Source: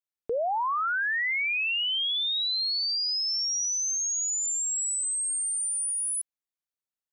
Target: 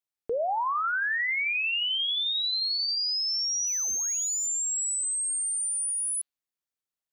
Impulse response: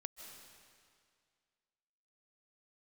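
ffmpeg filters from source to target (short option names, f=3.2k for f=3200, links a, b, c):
-filter_complex "[0:a]asplit=3[a][b][c];[a]afade=t=out:st=3.66:d=0.02[d];[b]aeval=exprs='0.0562*(cos(1*acos(clip(val(0)/0.0562,-1,1)))-cos(1*PI/2))+0.00447*(cos(7*acos(clip(val(0)/0.0562,-1,1)))-cos(7*PI/2))':c=same,afade=t=in:st=3.66:d=0.02,afade=t=out:st=4.47:d=0.02[e];[c]afade=t=in:st=4.47:d=0.02[f];[d][e][f]amix=inputs=3:normalize=0,bandreject=f=143.3:t=h:w=4,bandreject=f=286.6:t=h:w=4,bandreject=f=429.9:t=h:w=4,bandreject=f=573.2:t=h:w=4,bandreject=f=716.5:t=h:w=4,bandreject=f=859.8:t=h:w=4,bandreject=f=1.0031k:t=h:w=4,bandreject=f=1.1464k:t=h:w=4,bandreject=f=1.2897k:t=h:w=4,bandreject=f=1.433k:t=h:w=4,bandreject=f=1.5763k:t=h:w=4,bandreject=f=1.7196k:t=h:w=4,bandreject=f=1.8629k:t=h:w=4,bandreject=f=2.0062k:t=h:w=4,bandreject=f=2.1495k:t=h:w=4,bandreject=f=2.2928k:t=h:w=4,bandreject=f=2.4361k:t=h:w=4,bandreject=f=2.5794k:t=h:w=4,bandreject=f=2.7227k:t=h:w=4,bandreject=f=2.866k:t=h:w=4,bandreject=f=3.0093k:t=h:w=4,bandreject=f=3.1526k:t=h:w=4,bandreject=f=3.2959k:t=h:w=4,bandreject=f=3.4392k:t=h:w=4,bandreject=f=3.5825k:t=h:w=4,bandreject=f=3.7258k:t=h:w=4,bandreject=f=3.8691k:t=h:w=4,bandreject=f=4.0124k:t=h:w=4,bandreject=f=4.1557k:t=h:w=4,bandreject=f=4.299k:t=h:w=4,bandreject=f=4.4423k:t=h:w=4,bandreject=f=4.5856k:t=h:w=4,bandreject=f=4.7289k:t=h:w=4"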